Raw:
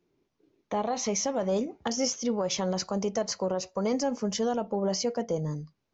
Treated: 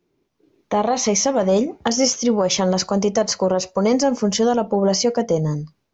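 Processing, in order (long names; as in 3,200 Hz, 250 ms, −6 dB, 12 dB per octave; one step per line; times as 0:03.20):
automatic gain control gain up to 6.5 dB
level +4 dB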